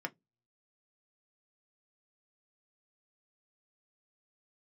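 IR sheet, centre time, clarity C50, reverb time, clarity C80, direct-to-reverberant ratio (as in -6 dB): 4 ms, 29.0 dB, 0.15 s, 40.5 dB, 4.0 dB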